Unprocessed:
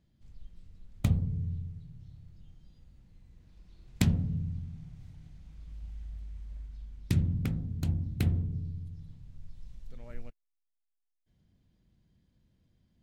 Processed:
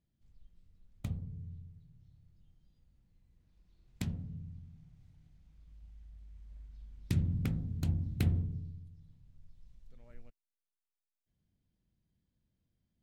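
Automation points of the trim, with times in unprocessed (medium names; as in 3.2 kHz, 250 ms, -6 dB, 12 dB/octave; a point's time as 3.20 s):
6.12 s -11.5 dB
7.42 s -2 dB
8.39 s -2 dB
8.93 s -11 dB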